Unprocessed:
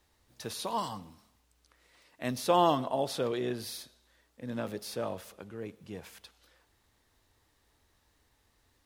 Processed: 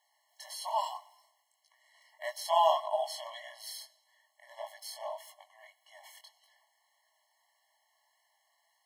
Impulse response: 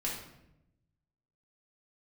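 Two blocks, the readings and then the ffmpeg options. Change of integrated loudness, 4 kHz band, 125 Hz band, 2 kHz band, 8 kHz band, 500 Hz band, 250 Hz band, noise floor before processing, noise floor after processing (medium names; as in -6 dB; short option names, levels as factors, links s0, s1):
-1.0 dB, -1.0 dB, under -40 dB, -3.0 dB, -2.0 dB, -3.0 dB, under -40 dB, -71 dBFS, -76 dBFS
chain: -af "afreqshift=-29,flanger=delay=17.5:depth=7.2:speed=1.7,afftfilt=real='re*eq(mod(floor(b*sr/1024/560),2),1)':imag='im*eq(mod(floor(b*sr/1024/560),2),1)':win_size=1024:overlap=0.75,volume=1.68"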